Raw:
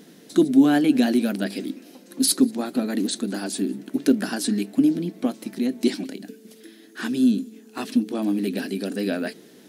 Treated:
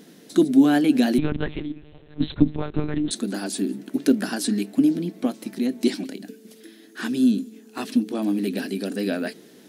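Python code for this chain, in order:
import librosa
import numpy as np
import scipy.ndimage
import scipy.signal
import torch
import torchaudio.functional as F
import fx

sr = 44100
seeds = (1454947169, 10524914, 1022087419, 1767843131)

y = fx.lpc_monotone(x, sr, seeds[0], pitch_hz=150.0, order=8, at=(1.18, 3.11))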